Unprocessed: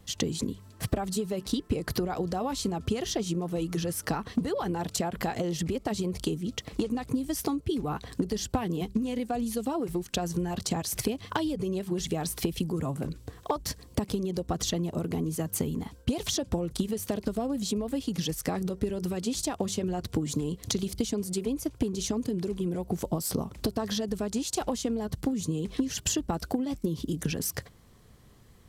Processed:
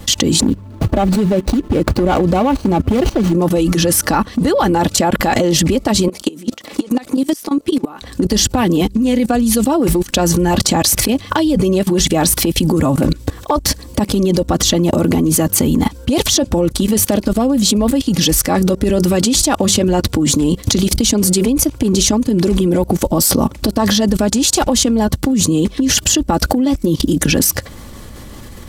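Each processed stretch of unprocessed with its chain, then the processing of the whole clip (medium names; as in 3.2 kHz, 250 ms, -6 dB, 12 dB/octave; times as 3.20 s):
0.40–3.33 s: median filter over 25 samples + bass shelf 340 Hz +2 dB + hard clipper -22.5 dBFS
6.08–8.02 s: high-pass 280 Hz + compression 8:1, threshold -38 dBFS + tape noise reduction on one side only decoder only
whole clip: comb 3.5 ms, depth 42%; level held to a coarse grid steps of 20 dB; loudness maximiser +28 dB; trim -1 dB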